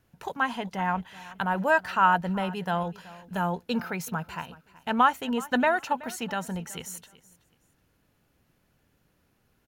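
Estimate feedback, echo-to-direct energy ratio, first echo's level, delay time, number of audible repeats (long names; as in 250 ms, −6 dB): 22%, −19.5 dB, −19.5 dB, 376 ms, 2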